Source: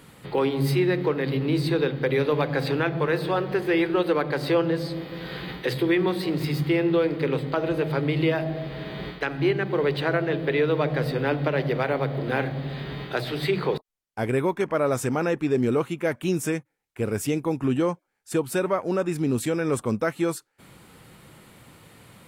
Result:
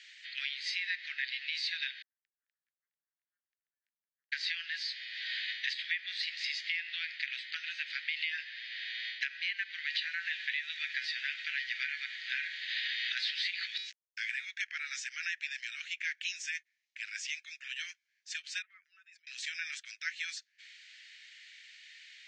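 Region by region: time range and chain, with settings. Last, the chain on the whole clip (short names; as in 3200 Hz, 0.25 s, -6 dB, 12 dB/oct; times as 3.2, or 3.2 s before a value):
2.02–4.32 steep low-pass 700 Hz + negative-ratio compressor -30 dBFS + frequency shift -430 Hz
9.86–14.45 resonator 90 Hz, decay 0.19 s, harmonics odd, mix 70% + companded quantiser 8-bit + fast leveller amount 70%
18.62–19.27 spectral contrast raised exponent 1.6 + compressor 2.5:1, threshold -30 dBFS
whole clip: steep high-pass 1700 Hz 72 dB/oct; compressor 6:1, threshold -35 dBFS; steep low-pass 6500 Hz 48 dB/oct; gain +4 dB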